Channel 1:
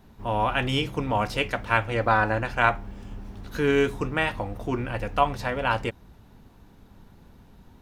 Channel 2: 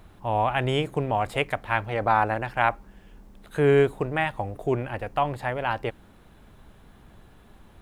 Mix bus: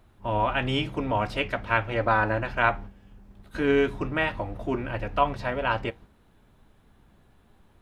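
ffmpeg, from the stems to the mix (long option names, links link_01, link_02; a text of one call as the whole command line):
ffmpeg -i stem1.wav -i stem2.wav -filter_complex "[0:a]lowpass=4100,volume=-1.5dB[link_01];[1:a]alimiter=limit=-14dB:level=0:latency=1:release=124,flanger=delay=8:depth=8:regen=-54:speed=0.76:shape=sinusoidal,volume=-4dB,asplit=2[link_02][link_03];[link_03]apad=whole_len=344710[link_04];[link_01][link_04]sidechaingate=range=-13dB:threshold=-53dB:ratio=16:detection=peak[link_05];[link_05][link_02]amix=inputs=2:normalize=0" out.wav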